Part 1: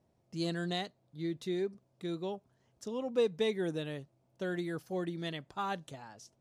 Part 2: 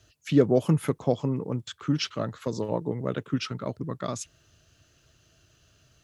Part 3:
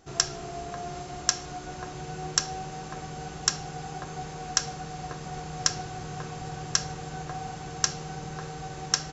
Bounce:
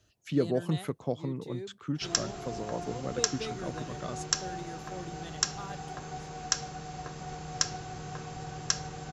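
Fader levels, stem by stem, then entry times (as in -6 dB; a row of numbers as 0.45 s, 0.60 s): -7.5 dB, -7.5 dB, -3.5 dB; 0.00 s, 0.00 s, 1.95 s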